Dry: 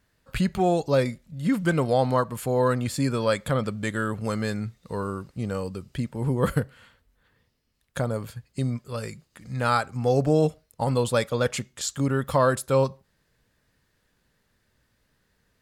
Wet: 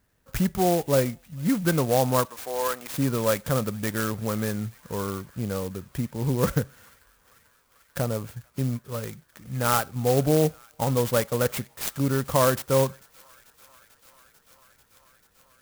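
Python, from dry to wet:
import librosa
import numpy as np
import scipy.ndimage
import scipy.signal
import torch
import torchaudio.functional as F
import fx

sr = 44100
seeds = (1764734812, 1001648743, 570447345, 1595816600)

y = fx.highpass(x, sr, hz=650.0, slope=12, at=(2.25, 2.93))
y = fx.echo_wet_highpass(y, sr, ms=442, feedback_pct=83, hz=2000.0, wet_db=-20)
y = fx.clock_jitter(y, sr, seeds[0], jitter_ms=0.074)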